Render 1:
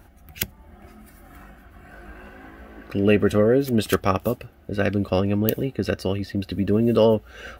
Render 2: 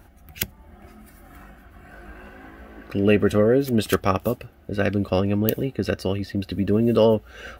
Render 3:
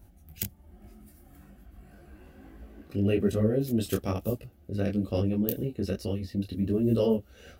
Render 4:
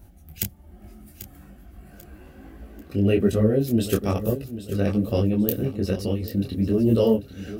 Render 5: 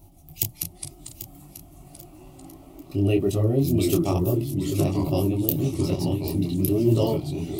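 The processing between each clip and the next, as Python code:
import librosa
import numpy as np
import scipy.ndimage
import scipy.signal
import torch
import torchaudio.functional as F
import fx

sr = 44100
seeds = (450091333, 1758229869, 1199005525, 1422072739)

y1 = x
y2 = fx.peak_eq(y1, sr, hz=1400.0, db=-13.0, octaves=2.5)
y2 = fx.detune_double(y2, sr, cents=40)
y3 = fx.echo_feedback(y2, sr, ms=791, feedback_pct=34, wet_db=-13)
y3 = y3 * librosa.db_to_amplitude(5.5)
y4 = fx.echo_pitch(y3, sr, ms=120, semitones=-3, count=3, db_per_echo=-6.0)
y4 = fx.fixed_phaser(y4, sr, hz=320.0, stages=8)
y4 = y4 * librosa.db_to_amplitude(3.0)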